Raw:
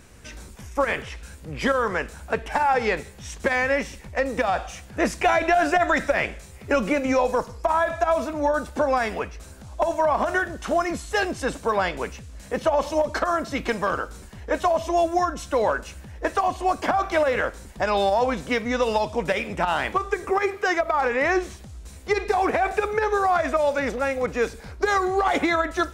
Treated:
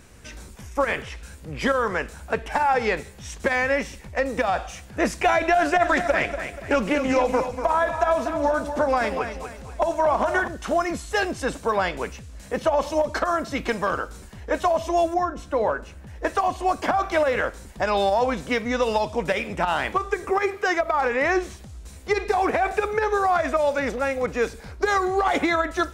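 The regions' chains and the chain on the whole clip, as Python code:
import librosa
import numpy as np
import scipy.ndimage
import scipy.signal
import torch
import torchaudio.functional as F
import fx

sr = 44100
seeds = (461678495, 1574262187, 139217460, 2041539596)

y = fx.chain(x, sr, fx.echo_feedback(ms=241, feedback_pct=37, wet_db=-9),
    fx.doppler_dist(depth_ms=0.16), at=(5.57, 10.48))
y = fx.chain(y, sr, fx.high_shelf(hz=2500.0, db=-11.5),
    fx.hum_notches(base_hz=60, count=8), at=(15.14, 16.07))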